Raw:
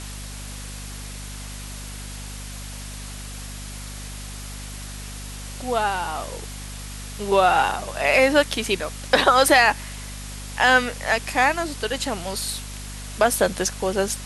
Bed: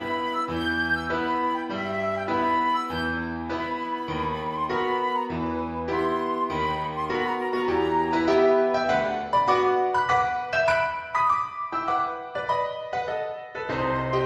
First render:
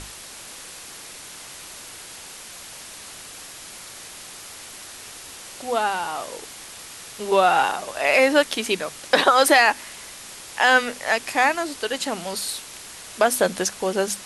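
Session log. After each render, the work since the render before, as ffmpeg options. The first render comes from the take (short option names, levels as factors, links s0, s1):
-af "bandreject=f=50:t=h:w=6,bandreject=f=100:t=h:w=6,bandreject=f=150:t=h:w=6,bandreject=f=200:t=h:w=6,bandreject=f=250:t=h:w=6"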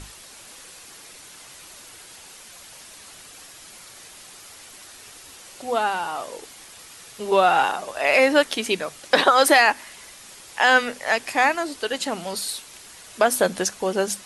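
-af "afftdn=nr=6:nf=-40"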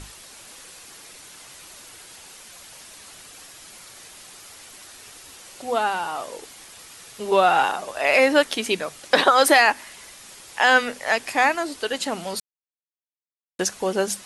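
-filter_complex "[0:a]asplit=3[s0][s1][s2];[s0]atrim=end=12.4,asetpts=PTS-STARTPTS,afade=t=out:st=12.396:d=0.004:c=hsin[s3];[s1]atrim=start=12.4:end=13.59,asetpts=PTS-STARTPTS,volume=0[s4];[s2]atrim=start=13.59,asetpts=PTS-STARTPTS,afade=t=in:d=0.004:c=hsin[s5];[s3][s4][s5]concat=n=3:v=0:a=1"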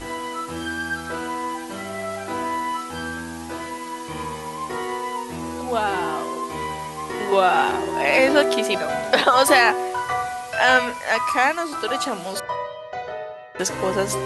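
-filter_complex "[1:a]volume=0.75[s0];[0:a][s0]amix=inputs=2:normalize=0"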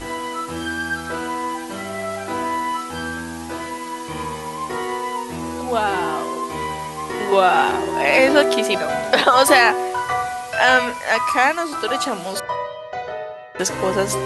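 -af "volume=1.33,alimiter=limit=0.891:level=0:latency=1"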